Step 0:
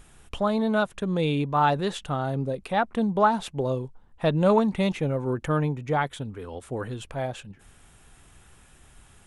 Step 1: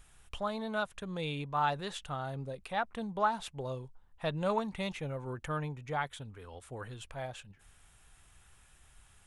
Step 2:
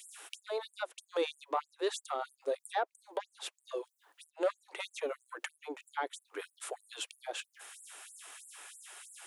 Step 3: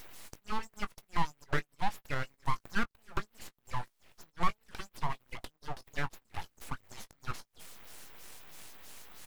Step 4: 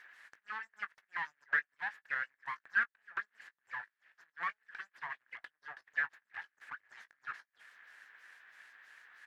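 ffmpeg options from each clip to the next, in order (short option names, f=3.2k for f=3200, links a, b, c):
-af "equalizer=f=280:t=o:w=2.2:g=-9.5,volume=-6dB"
-filter_complex "[0:a]acrossover=split=450[a][b];[b]acompressor=threshold=-52dB:ratio=3[c];[a][c]amix=inputs=2:normalize=0,asoftclip=type=tanh:threshold=-31.5dB,afftfilt=real='re*gte(b*sr/1024,280*pow(7400/280,0.5+0.5*sin(2*PI*3.1*pts/sr)))':imag='im*gte(b*sr/1024,280*pow(7400/280,0.5+0.5*sin(2*PI*3.1*pts/sr)))':win_size=1024:overlap=0.75,volume=14.5dB"
-filter_complex "[0:a]acrossover=split=1200[a][b];[b]acompressor=threshold=-52dB:ratio=5[c];[a][c]amix=inputs=2:normalize=0,aeval=exprs='abs(val(0))':c=same,asplit=2[d][e];[e]adelay=19,volume=-13.5dB[f];[d][f]amix=inputs=2:normalize=0,volume=5.5dB"
-af "bandpass=f=1.7k:t=q:w=7.9:csg=0,volume=10.5dB"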